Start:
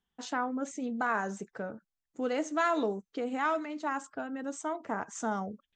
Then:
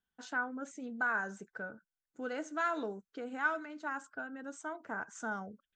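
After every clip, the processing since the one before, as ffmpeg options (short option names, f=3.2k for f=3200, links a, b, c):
-af "equalizer=f=1.5k:w=6.5:g=13.5,volume=-8dB"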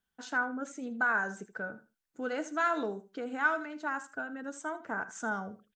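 -af "aecho=1:1:79|158:0.168|0.0336,volume=4dB"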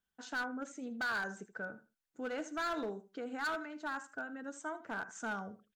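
-af "volume=28.5dB,asoftclip=hard,volume=-28.5dB,volume=-4dB"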